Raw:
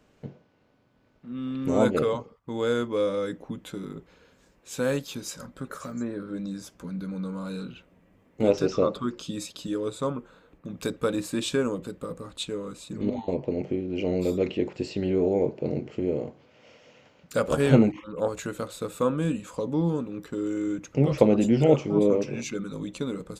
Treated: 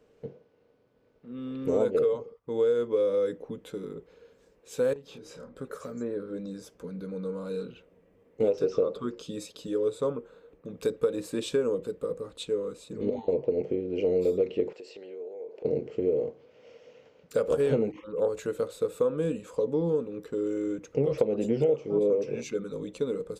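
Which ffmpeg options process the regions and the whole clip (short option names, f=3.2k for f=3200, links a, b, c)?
-filter_complex "[0:a]asettb=1/sr,asplit=3[a][b][c];[a]atrim=end=4.934[d];[b]atrim=start=4.93:end=5.56,asetpts=PTS-STARTPTS,afade=t=in:d=0.004:c=qsin,afade=t=out:st=0.626:d=0.004:c=qsin,aemphasis=mode=reproduction:type=75fm,acompressor=threshold=-40dB:ratio=12:attack=3.2:release=140:knee=1:detection=peak,asplit=2[e][f];[f]adelay=29,volume=-3.5dB[g];[e][g]amix=inputs=2:normalize=0,atrim=end_sample=27783[h];[c]atrim=start=5.556[i];[d][h]acrossfade=d=0.004:c1=hsin:c2=qsin[j];[j][i]acrossfade=d=0.004:c1=qsin:c2=hsin,asettb=1/sr,asplit=3[k][l][m];[k]atrim=end=14.734[n];[l]atrim=start=14.73:end=15.65,asetpts=PTS-STARTPTS,afade=t=in:d=0.004:c=qsin,afade=t=out:st=0.916:d=0.004:c=qsin,highpass=520,acompressor=threshold=-40dB:ratio=16:attack=3.2:release=140:knee=1:detection=peak[o];[m]atrim=start=15.646[p];[n][o]acrossfade=d=0.004:c1=hsin:c2=qsin[q];[q][p]acrossfade=d=0.004:c1=qsin:c2=hsin,equalizer=f=460:t=o:w=0.46:g=15,bandreject=f=6.9k:w=25,acompressor=threshold=-15dB:ratio=10,volume=-6dB"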